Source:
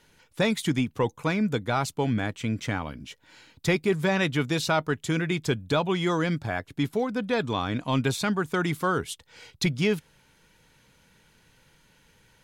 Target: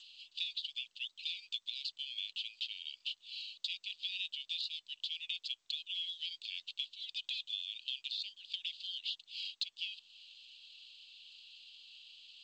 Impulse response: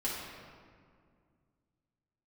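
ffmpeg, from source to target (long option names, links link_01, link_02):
-af "asuperpass=centerf=3600:order=12:qfactor=1.7,acompressor=threshold=-50dB:ratio=10,volume=13dB" -ar 16000 -c:a g722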